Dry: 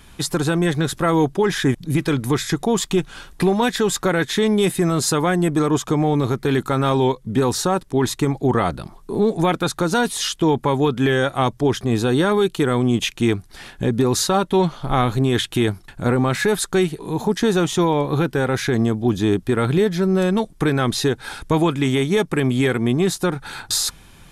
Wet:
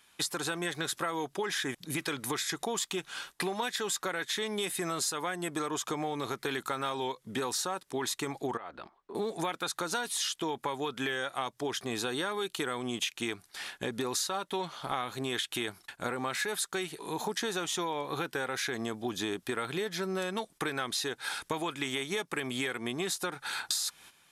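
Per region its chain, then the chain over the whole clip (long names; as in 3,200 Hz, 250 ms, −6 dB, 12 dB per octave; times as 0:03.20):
0:08.57–0:09.15: parametric band 140 Hz −11 dB 0.84 octaves + downward compressor 10 to 1, threshold −29 dBFS + Bessel low-pass filter 2,000 Hz
whole clip: high-pass filter 1,200 Hz 6 dB per octave; noise gate −47 dBFS, range −11 dB; downward compressor, threshold −30 dBFS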